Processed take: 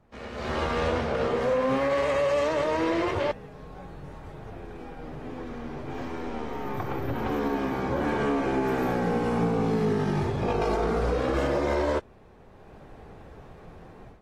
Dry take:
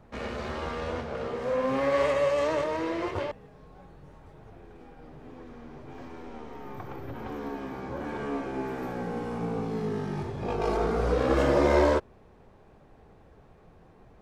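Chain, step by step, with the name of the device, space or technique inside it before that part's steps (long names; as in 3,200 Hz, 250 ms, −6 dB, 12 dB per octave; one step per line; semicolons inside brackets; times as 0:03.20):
low-bitrate web radio (automatic gain control gain up to 16 dB; brickwall limiter −10 dBFS, peak gain reduction 8.5 dB; level −7.5 dB; AAC 48 kbit/s 44,100 Hz)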